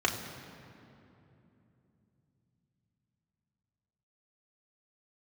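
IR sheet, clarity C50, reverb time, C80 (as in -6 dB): 7.0 dB, 3.0 s, 8.0 dB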